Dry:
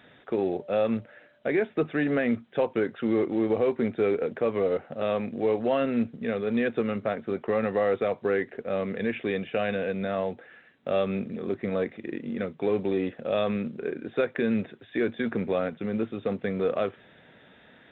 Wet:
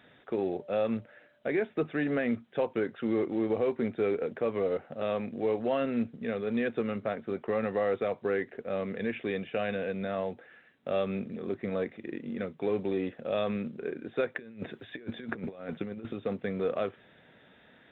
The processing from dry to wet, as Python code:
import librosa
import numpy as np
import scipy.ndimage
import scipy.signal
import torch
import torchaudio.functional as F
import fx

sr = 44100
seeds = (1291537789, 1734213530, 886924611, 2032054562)

y = fx.over_compress(x, sr, threshold_db=-33.0, ratio=-0.5, at=(14.36, 16.13))
y = F.gain(torch.from_numpy(y), -4.0).numpy()